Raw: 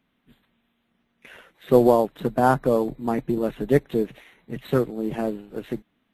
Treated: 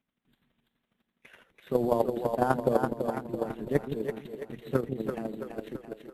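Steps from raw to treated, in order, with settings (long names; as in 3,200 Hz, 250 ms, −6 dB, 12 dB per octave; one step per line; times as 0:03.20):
output level in coarse steps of 10 dB
echo with a time of its own for lows and highs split 370 Hz, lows 158 ms, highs 335 ms, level −5 dB
square-wave tremolo 12 Hz, depth 60%, duty 20%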